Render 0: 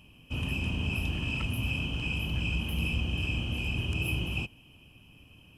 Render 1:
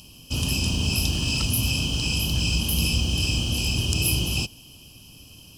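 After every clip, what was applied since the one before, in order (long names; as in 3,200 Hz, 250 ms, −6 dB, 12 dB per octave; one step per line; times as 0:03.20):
high shelf with overshoot 3,300 Hz +14 dB, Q 3
level +6.5 dB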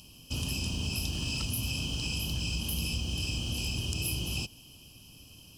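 downward compressor 2.5 to 1, threshold −25 dBFS, peak gain reduction 5.5 dB
level −5.5 dB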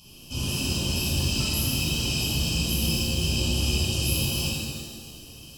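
reverb with rising layers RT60 1.6 s, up +7 semitones, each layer −8 dB, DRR −9.5 dB
level −3 dB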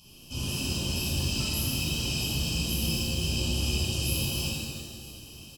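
single-tap delay 957 ms −20 dB
level −3.5 dB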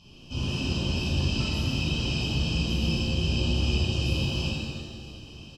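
high-frequency loss of the air 160 metres
level +4 dB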